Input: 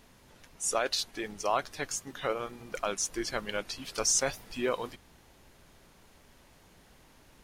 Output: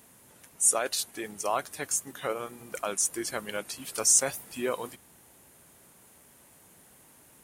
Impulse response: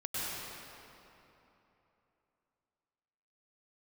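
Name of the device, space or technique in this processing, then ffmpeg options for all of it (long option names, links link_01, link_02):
budget condenser microphone: -af "highpass=100,highshelf=frequency=6800:width_type=q:width=1.5:gain=10.5"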